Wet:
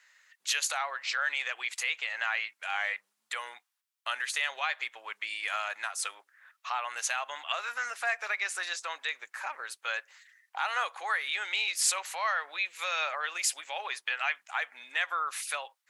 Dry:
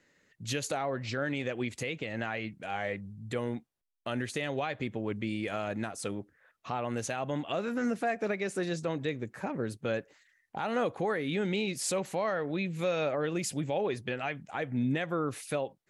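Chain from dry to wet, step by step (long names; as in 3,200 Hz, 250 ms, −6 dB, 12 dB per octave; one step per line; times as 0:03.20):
high-pass filter 1,000 Hz 24 dB per octave
level +7.5 dB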